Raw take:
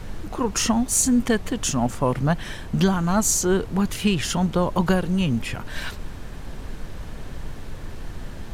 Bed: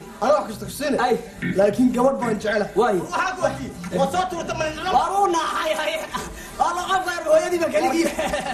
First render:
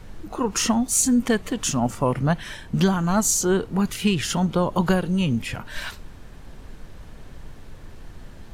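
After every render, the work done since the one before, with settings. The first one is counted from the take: noise print and reduce 7 dB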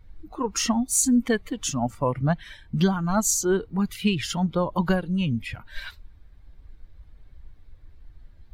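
expander on every frequency bin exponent 1.5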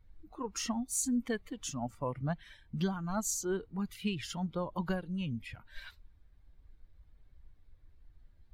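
trim -11.5 dB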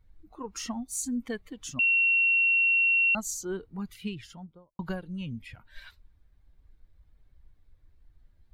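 1.79–3.15 s: bleep 2.73 kHz -20 dBFS; 3.92–4.79 s: studio fade out

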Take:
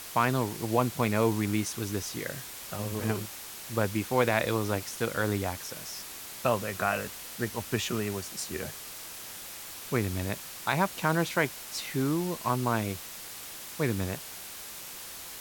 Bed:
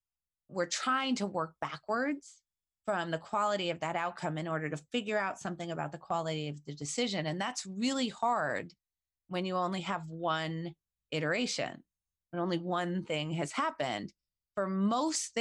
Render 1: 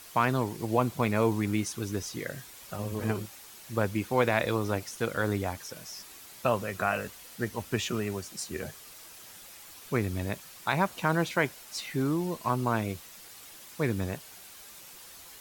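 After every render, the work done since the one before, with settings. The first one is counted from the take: noise reduction 8 dB, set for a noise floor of -43 dBFS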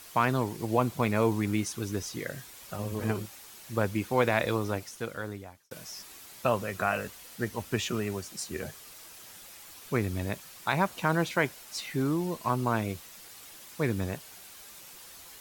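4.52–5.71 s: fade out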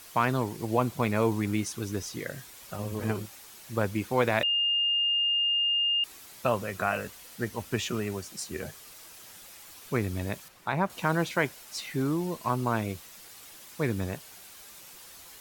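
4.43–6.04 s: bleep 2.82 kHz -23 dBFS; 10.48–10.90 s: treble shelf 2.7 kHz -11.5 dB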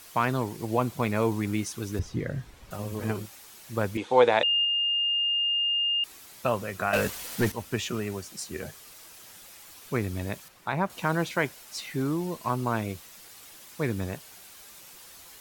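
1.99–2.71 s: RIAA curve playback; 3.97–4.65 s: cabinet simulation 180–7900 Hz, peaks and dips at 190 Hz -7 dB, 480 Hz +9 dB, 850 Hz +10 dB, 3.5 kHz +9 dB, 5.1 kHz -5 dB, 7.3 kHz -3 dB; 6.93–7.52 s: waveshaping leveller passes 3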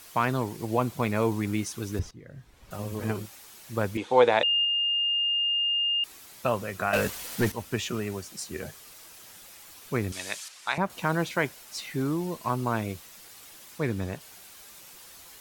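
2.11–2.78 s: fade in quadratic, from -18 dB; 10.12–10.78 s: frequency weighting ITU-R 468; 13.78–14.21 s: treble shelf 8.1 kHz -6.5 dB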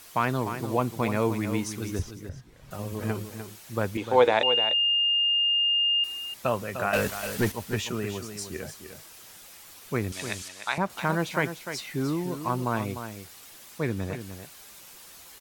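delay 300 ms -9.5 dB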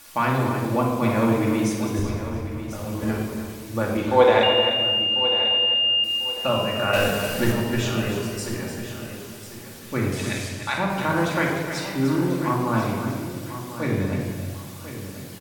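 feedback delay 1044 ms, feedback 29%, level -12 dB; simulated room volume 1400 m³, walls mixed, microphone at 2.4 m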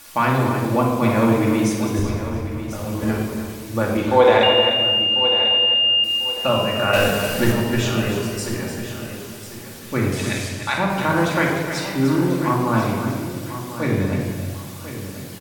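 trim +3.5 dB; peak limiter -3 dBFS, peak gain reduction 3 dB

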